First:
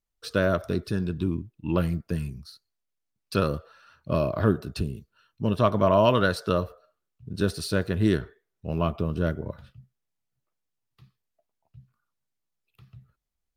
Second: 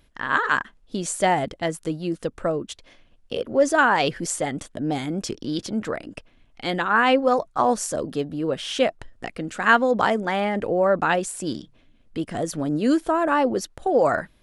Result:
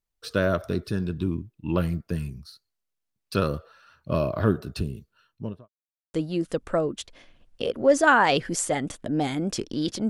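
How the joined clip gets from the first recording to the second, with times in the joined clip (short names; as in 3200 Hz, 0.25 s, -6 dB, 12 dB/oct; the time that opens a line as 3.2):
first
5.2–5.69 studio fade out
5.69–6.14 mute
6.14 switch to second from 1.85 s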